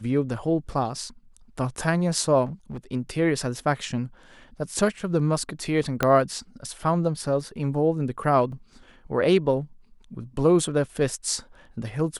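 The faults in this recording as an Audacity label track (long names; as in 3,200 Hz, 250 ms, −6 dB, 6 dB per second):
2.450000	2.780000	clipping −30 dBFS
6.030000	6.030000	click −7 dBFS
8.520000	8.520000	drop-out 2.3 ms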